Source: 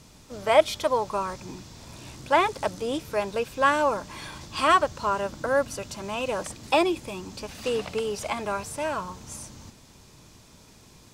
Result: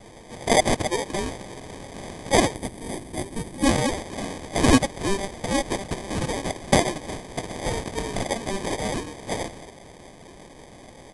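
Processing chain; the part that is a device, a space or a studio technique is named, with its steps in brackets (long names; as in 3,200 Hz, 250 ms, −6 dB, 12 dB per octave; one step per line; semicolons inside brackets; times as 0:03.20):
meter weighting curve ITU-R 468
crushed at another speed (tape speed factor 2×; decimation without filtering 16×; tape speed factor 0.5×)
gain on a spectral selection 0:02.55–0:03.65, 400–7,800 Hz −7 dB
high-shelf EQ 5,300 Hz +4.5 dB
level +1 dB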